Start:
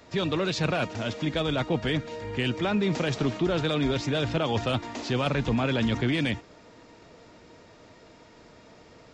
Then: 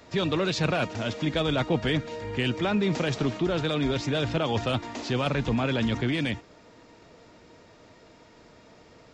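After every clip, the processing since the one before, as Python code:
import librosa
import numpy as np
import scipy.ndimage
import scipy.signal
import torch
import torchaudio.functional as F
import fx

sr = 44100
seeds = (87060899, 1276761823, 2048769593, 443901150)

y = fx.rider(x, sr, range_db=10, speed_s=2.0)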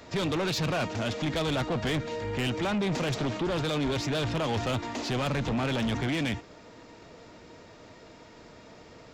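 y = 10.0 ** (-28.0 / 20.0) * np.tanh(x / 10.0 ** (-28.0 / 20.0))
y = y * 10.0 ** (3.0 / 20.0)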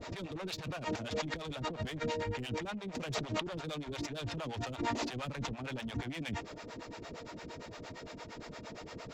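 y = fx.over_compress(x, sr, threshold_db=-36.0, ratio=-1.0)
y = fx.harmonic_tremolo(y, sr, hz=8.7, depth_pct=100, crossover_hz=470.0)
y = y * 10.0 ** (2.0 / 20.0)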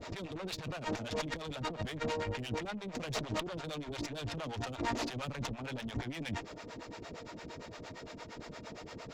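y = fx.tube_stage(x, sr, drive_db=31.0, bias=0.8)
y = y * 10.0 ** (4.5 / 20.0)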